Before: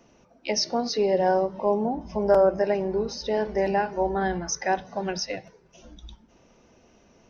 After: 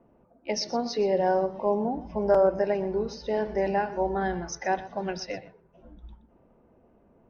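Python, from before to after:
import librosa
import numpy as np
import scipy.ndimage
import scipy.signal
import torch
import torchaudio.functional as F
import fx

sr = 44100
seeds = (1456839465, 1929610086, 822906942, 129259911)

y = fx.env_lowpass(x, sr, base_hz=1000.0, full_db=-22.5)
y = fx.high_shelf(y, sr, hz=4600.0, db=-6.5)
y = y + 10.0 ** (-16.5 / 20.0) * np.pad(y, (int(122 * sr / 1000.0), 0))[:len(y)]
y = y * librosa.db_to_amplitude(-2.0)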